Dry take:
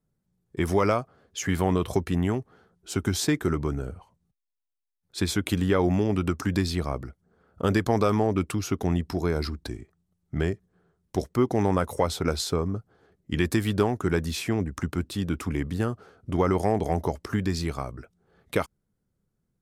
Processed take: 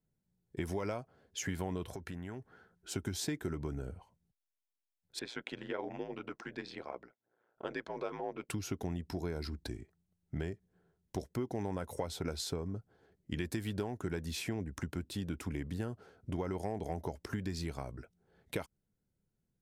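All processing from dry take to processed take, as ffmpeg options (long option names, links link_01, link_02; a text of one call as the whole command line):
ffmpeg -i in.wav -filter_complex "[0:a]asettb=1/sr,asplit=3[link_01][link_02][link_03];[link_01]atrim=end=1.904[link_04];[link_02]atrim=start=1.9:end=2.91,asetpts=PTS-STARTPTS,afade=type=in:duration=0.004:curve=qsin,afade=type=out:start_time=1.006:duration=0.004:curve=qsin,equalizer=frequency=1500:width=1.8:gain=8.5,acompressor=threshold=-34dB:ratio=5:attack=3.2:release=140:knee=1:detection=peak[link_05];[link_03]atrim=start=2.906[link_06];[link_04][link_05]acrossfade=duration=0.004:curve1=hsin:curve2=qsin[link_07];[link_07][link_06]acrossfade=duration=0.004:curve1=qsin:curve2=hsin,asettb=1/sr,asplit=3[link_08][link_09][link_10];[link_08]atrim=end=5.194[link_11];[link_09]atrim=start=5.19:end=8.49,asetpts=PTS-STARTPTS,afade=type=in:duration=0.004:curve=qsin,afade=type=out:start_time=3.296:duration=0.004:curve=qsin,highpass=460,lowpass=3000,aeval=exprs='val(0)*sin(2*PI*58*n/s)':channel_layout=same[link_12];[link_10]atrim=start=8.486[link_13];[link_11][link_12]acrossfade=duration=0.004:curve1=hsin:curve2=qsin[link_14];[link_14][link_13]acrossfade=duration=0.004:curve1=qsin:curve2=hsin,bandreject=frequency=1200:width=5.3,acompressor=threshold=-28dB:ratio=4,volume=-6dB" out.wav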